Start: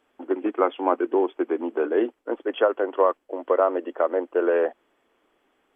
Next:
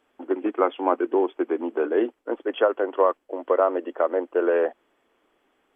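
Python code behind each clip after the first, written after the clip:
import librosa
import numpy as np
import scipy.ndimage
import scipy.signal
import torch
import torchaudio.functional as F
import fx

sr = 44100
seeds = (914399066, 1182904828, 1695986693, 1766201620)

y = x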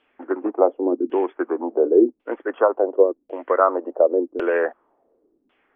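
y = fx.filter_lfo_lowpass(x, sr, shape='saw_down', hz=0.91, low_hz=230.0, high_hz=3000.0, q=2.8)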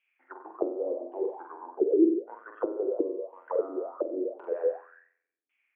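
y = fx.room_flutter(x, sr, wall_m=7.9, rt60_s=0.82)
y = fx.auto_wah(y, sr, base_hz=320.0, top_hz=2400.0, q=9.1, full_db=-12.0, direction='down')
y = y * librosa.db_to_amplitude(-2.5)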